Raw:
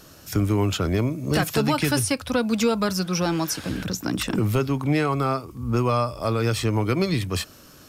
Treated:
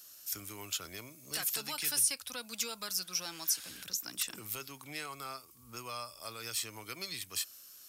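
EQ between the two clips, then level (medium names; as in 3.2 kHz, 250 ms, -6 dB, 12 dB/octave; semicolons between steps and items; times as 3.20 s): pre-emphasis filter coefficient 0.97; -2.0 dB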